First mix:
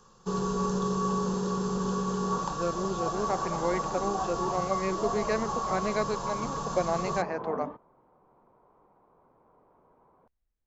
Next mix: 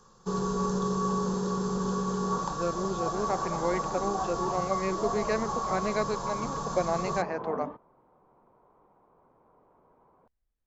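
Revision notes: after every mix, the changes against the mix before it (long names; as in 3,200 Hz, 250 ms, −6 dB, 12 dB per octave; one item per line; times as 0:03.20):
first sound: add parametric band 2,800 Hz −6.5 dB 0.33 octaves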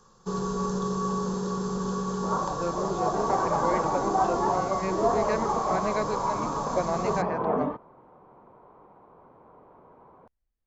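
speech: add high-frequency loss of the air 77 metres
second sound +9.5 dB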